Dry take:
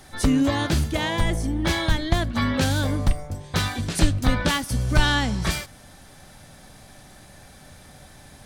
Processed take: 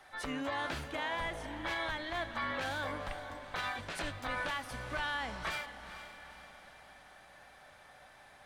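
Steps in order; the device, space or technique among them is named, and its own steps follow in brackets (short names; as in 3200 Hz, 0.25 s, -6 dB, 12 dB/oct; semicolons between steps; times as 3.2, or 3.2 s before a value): DJ mixer with the lows and highs turned down (three-band isolator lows -19 dB, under 540 Hz, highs -15 dB, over 3000 Hz; limiter -23 dBFS, peak gain reduction 9 dB); diffused feedback echo 0.464 s, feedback 50%, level -11 dB; gain -4 dB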